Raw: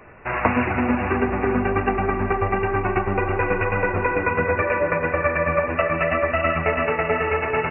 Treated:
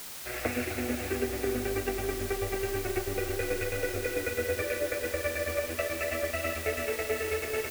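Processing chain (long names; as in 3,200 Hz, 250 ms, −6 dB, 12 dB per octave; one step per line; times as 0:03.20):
dead-zone distortion −35.5 dBFS
phaser with its sweep stopped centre 410 Hz, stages 4
bit-depth reduction 6 bits, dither triangular
level −6 dB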